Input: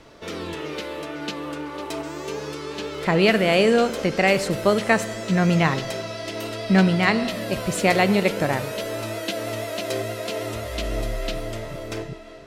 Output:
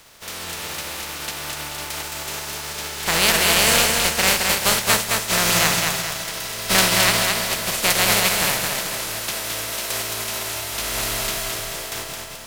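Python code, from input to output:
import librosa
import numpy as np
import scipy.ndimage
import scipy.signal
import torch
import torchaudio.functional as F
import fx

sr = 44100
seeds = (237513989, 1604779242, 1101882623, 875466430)

p1 = fx.spec_flatten(x, sr, power=0.3)
p2 = fx.peak_eq(p1, sr, hz=300.0, db=-6.0, octaves=1.2)
y = p2 + fx.echo_feedback(p2, sr, ms=217, feedback_pct=44, wet_db=-3.5, dry=0)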